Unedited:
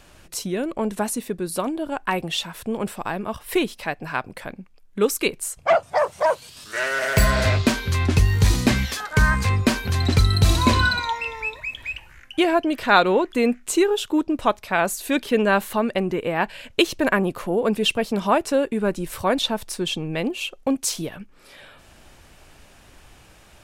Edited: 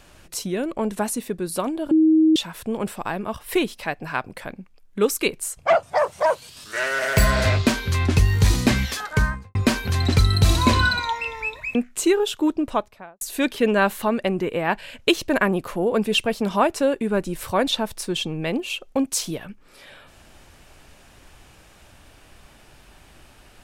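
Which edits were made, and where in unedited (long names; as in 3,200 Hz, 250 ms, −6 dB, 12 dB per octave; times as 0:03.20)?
0:01.91–0:02.36: beep over 316 Hz −12 dBFS
0:09.05–0:09.55: fade out and dull
0:11.75–0:13.46: remove
0:14.26–0:14.92: fade out and dull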